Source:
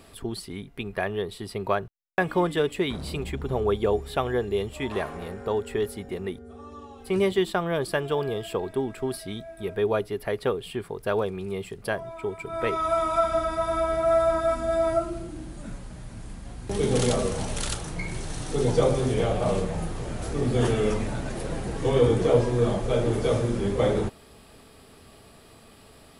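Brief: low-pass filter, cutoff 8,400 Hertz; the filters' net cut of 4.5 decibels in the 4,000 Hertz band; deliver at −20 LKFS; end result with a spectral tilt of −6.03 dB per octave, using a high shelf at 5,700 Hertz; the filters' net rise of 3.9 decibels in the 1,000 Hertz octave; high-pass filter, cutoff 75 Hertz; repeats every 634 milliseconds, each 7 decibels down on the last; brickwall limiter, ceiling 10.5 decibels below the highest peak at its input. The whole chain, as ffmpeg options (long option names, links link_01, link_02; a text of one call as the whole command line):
ffmpeg -i in.wav -af "highpass=75,lowpass=8400,equalizer=frequency=1000:width_type=o:gain=6,equalizer=frequency=4000:width_type=o:gain=-5,highshelf=frequency=5700:gain=-3.5,alimiter=limit=-17dB:level=0:latency=1,aecho=1:1:634|1268|1902|2536|3170:0.447|0.201|0.0905|0.0407|0.0183,volume=7.5dB" out.wav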